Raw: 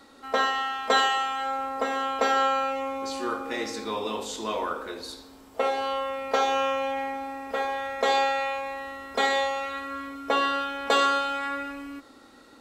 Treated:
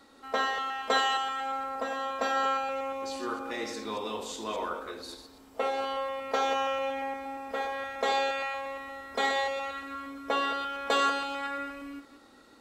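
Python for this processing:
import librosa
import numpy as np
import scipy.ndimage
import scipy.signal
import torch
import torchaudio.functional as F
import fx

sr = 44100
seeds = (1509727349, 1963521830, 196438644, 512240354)

y = fx.reverse_delay(x, sr, ms=117, wet_db=-9.5)
y = fx.notch_comb(y, sr, f0_hz=430.0, at=(1.8, 2.44))
y = F.gain(torch.from_numpy(y), -4.5).numpy()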